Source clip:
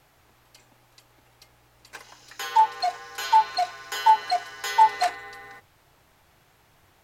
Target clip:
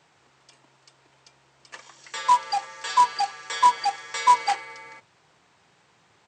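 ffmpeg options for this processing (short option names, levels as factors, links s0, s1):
-af "aresample=16000,acrusher=bits=4:mode=log:mix=0:aa=0.000001,aresample=44100,highpass=130,asetrate=49392,aresample=44100"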